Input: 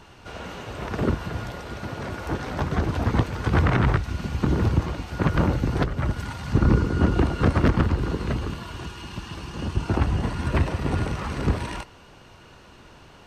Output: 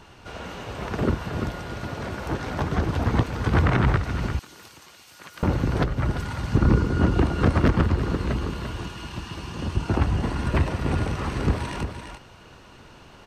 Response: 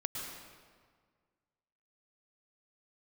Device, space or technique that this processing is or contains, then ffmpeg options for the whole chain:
ducked delay: -filter_complex "[0:a]asplit=3[s0][s1][s2];[s1]adelay=343,volume=0.447[s3];[s2]apad=whole_len=600281[s4];[s3][s4]sidechaincompress=threshold=0.0794:ratio=8:attack=16:release=588[s5];[s0][s5]amix=inputs=2:normalize=0,asettb=1/sr,asplit=3[s6][s7][s8];[s6]atrim=end=4.394[s9];[s7]atrim=start=4.39:end=5.43,asetpts=PTS-STARTPTS,afade=t=in:d=0.004:c=qsin,afade=t=out:st=1.036:d=0.004:c=qsin,aderivative[s10];[s8]atrim=start=5.426[s11];[s9][s10]acrossfade=d=0.004:c1=hsin:c2=qsin[s12];[s12][s11]acrossfade=d=0.004:c1=qsin:c2=hsin"

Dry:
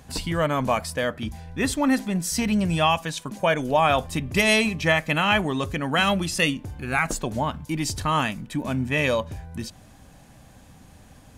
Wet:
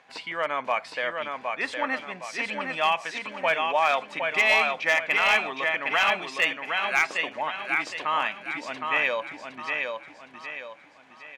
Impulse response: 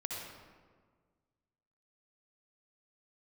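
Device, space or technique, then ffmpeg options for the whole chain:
megaphone: -filter_complex "[0:a]asettb=1/sr,asplit=3[s0][s1][s2];[s0]atrim=end=6.574[s3];[s1]atrim=start=6.57:end=7.06,asetpts=PTS-STARTPTS,afade=t=in:d=0.004:c=qsin,afade=t=out:st=0.486:d=0.004:c=qsin,aemphasis=mode=production:type=bsi[s4];[s2]atrim=start=7.056[s5];[s3][s4]acrossfade=d=0.004:c1=hsin:c2=qsin[s6];[s6][s5]acrossfade=d=0.004:c1=qsin:c2=hsin,highpass=650,lowpass=3100,equalizer=f=2200:t=o:w=0.44:g=6.5,aecho=1:1:763|1526|2289|3052|3815:0.596|0.238|0.0953|0.0381|0.0152,asoftclip=type=hard:threshold=0.251,volume=0.841"

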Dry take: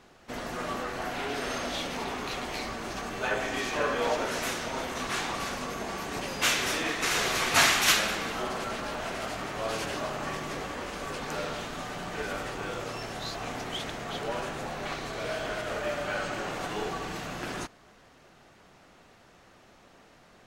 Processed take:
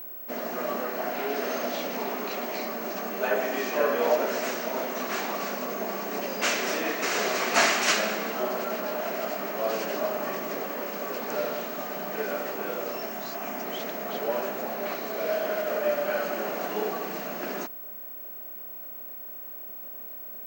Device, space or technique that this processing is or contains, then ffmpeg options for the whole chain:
old television with a line whistle: -filter_complex "[0:a]highpass=f=200:w=0.5412,highpass=f=200:w=1.3066,equalizer=f=210:t=q:w=4:g=7,equalizer=f=410:t=q:w=4:g=5,equalizer=f=620:t=q:w=4:g=8,equalizer=f=3500:t=q:w=4:g=-7,lowpass=f=7600:w=0.5412,lowpass=f=7600:w=1.3066,aeval=exprs='val(0)+0.0141*sin(2*PI*15734*n/s)':c=same,asettb=1/sr,asplit=3[s0][s1][s2];[s0]atrim=end=13.094[s3];[s1]atrim=start=13.09:end=13.64,asetpts=PTS-STARTPTS,afade=t=in:d=0.004:c=qsin,afade=t=out:st=0.546:d=0.004:c=qsin,equalizer=f=500:t=o:w=0.33:g=-10,equalizer=f=4000:t=o:w=0.33:g=-6,equalizer=f=10000:t=o:w=0.33:g=5[s4];[s2]atrim=start=13.636[s5];[s3][s4]acrossfade=d=0.004:c1=hsin:c2=qsin[s6];[s6][s5]acrossfade=d=0.004:c1=qsin:c2=hsin"

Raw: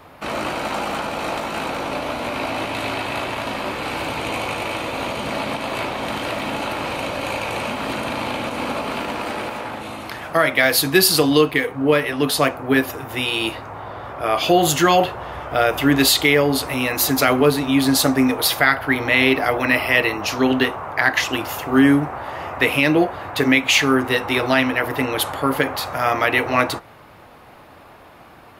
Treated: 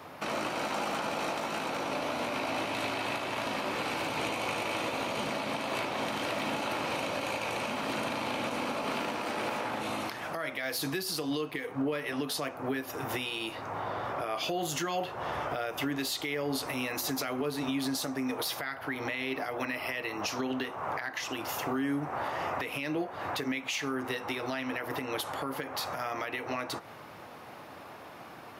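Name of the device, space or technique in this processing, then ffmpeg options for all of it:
broadcast voice chain: -af "highpass=120,deesser=0.3,acompressor=threshold=0.0631:ratio=3,equalizer=f=5700:t=o:w=0.4:g=5,alimiter=limit=0.0891:level=0:latency=1:release=304,volume=0.794"

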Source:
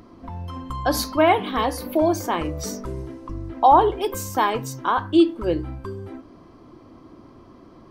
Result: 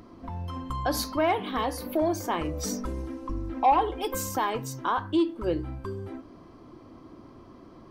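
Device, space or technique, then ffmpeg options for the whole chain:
soft clipper into limiter: -filter_complex "[0:a]asoftclip=type=tanh:threshold=0.398,alimiter=limit=0.178:level=0:latency=1:release=453,asettb=1/sr,asplit=3[s0][s1][s2];[s0]atrim=end=2.534[s3];[s1]atrim=start=2.53:end=4.36,asetpts=PTS-STARTPTS,afade=t=in:d=0.004:c=qsin,afade=t=out:st=1.826:d=0.004:c=qsin,aecho=1:1:3.8:0.63,atrim=end_sample=80703[s4];[s2]atrim=start=4.356[s5];[s3][s4]acrossfade=d=0.004:c1=hsin:c2=qsin[s6];[s6][s5]acrossfade=d=0.004:c1=qsin:c2=hsin,volume=0.794"

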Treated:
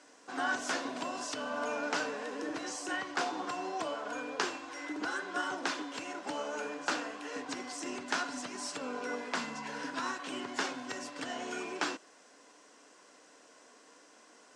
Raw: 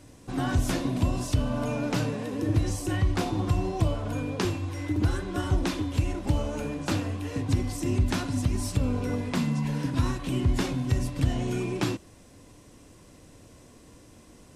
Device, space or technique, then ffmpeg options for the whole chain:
phone speaker on a table: -af "highpass=f=350:w=0.5412,highpass=f=350:w=1.3066,equalizer=f=350:t=q:w=4:g=-9,equalizer=f=540:t=q:w=4:g=-5,equalizer=f=1500:t=q:w=4:g=6,equalizer=f=2400:t=q:w=4:g=-3,equalizer=f=3700:t=q:w=4:g=-4,lowpass=f=7600:w=0.5412,lowpass=f=7600:w=1.3066"

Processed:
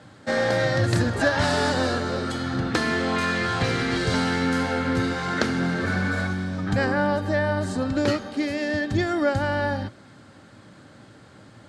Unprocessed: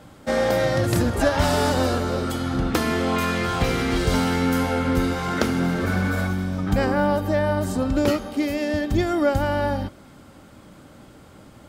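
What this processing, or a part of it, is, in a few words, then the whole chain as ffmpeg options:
car door speaker: -af "highpass=100,equalizer=f=110:t=q:w=4:g=8,equalizer=f=1700:t=q:w=4:g=8,equalizer=f=4200:t=q:w=4:g=6,lowpass=f=9100:w=0.5412,lowpass=f=9100:w=1.3066,volume=0.75"

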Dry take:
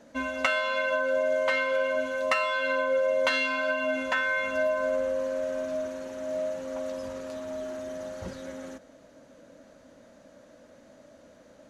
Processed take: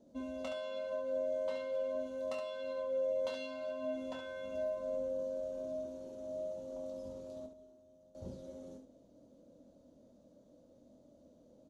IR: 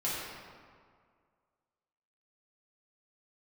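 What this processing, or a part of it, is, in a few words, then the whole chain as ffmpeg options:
slapback doubling: -filter_complex "[0:a]asettb=1/sr,asplit=3[s0][s1][s2];[s0]atrim=end=7.464[s3];[s1]atrim=start=7.46:end=8.15,asetpts=PTS-STARTPTS,afade=t=in:d=0.004:c=qsin,afade=t=out:st=0.686:d=0.004:c=qsin,agate=range=0.0224:threshold=0.0562:ratio=3:detection=peak[s4];[s2]atrim=start=8.146[s5];[s3][s4]acrossfade=d=0.004:c1=hsin:c2=qsin[s6];[s6][s5]acrossfade=d=0.004:c1=qsin:c2=hsin,asplit=3[s7][s8][s9];[s8]adelay=24,volume=0.501[s10];[s9]adelay=70,volume=0.473[s11];[s7][s10][s11]amix=inputs=3:normalize=0,firequalizer=gain_entry='entry(340,0);entry(1700,-26);entry(3500,-10)':delay=0.05:min_phase=1,volume=0.422"

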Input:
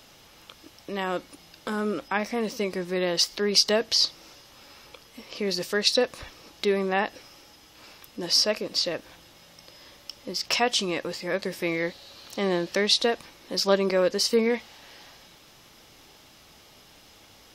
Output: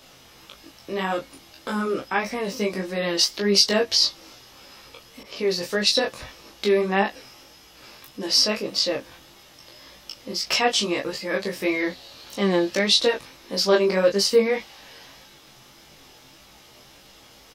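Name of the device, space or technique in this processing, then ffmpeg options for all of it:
double-tracked vocal: -filter_complex "[0:a]asplit=2[s0][s1];[s1]adelay=15,volume=0.631[s2];[s0][s2]amix=inputs=2:normalize=0,flanger=delay=20:depth=3.5:speed=1.7,asettb=1/sr,asplit=3[s3][s4][s5];[s3]atrim=end=5.234[s6];[s4]atrim=start=5.23:end=5.79,asetpts=PTS-STARTPTS,afade=t=in:d=0.004:c=qsin,afade=t=out:st=0.556:d=0.004:c=qsin,adynamicequalizer=threshold=0.00501:dfrequency=1900:dqfactor=0.7:tfrequency=1900:tqfactor=0.7:attack=5:release=100:ratio=0.375:range=2:mode=cutabove:tftype=highshelf[s7];[s5]atrim=start=5.786[s8];[s6][s7]acrossfade=d=0.004:c1=hsin:c2=qsin[s9];[s9][s8]acrossfade=d=0.004:c1=qsin:c2=hsin,volume=1.68"

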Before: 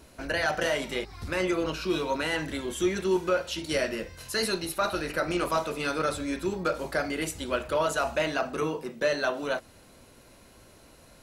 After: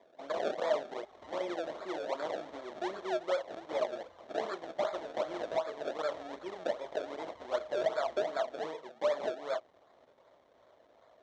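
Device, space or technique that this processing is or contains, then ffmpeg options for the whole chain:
circuit-bent sampling toy: -af "asubboost=boost=8.5:cutoff=72,acrusher=samples=30:mix=1:aa=0.000001:lfo=1:lforange=30:lforate=2.6,highpass=430,equalizer=f=630:t=q:w=4:g=8,equalizer=f=1500:t=q:w=4:g=-5,equalizer=f=2600:t=q:w=4:g=-10,equalizer=f=4800:t=q:w=4:g=-9,lowpass=f=5100:w=0.5412,lowpass=f=5100:w=1.3066,volume=0.501"

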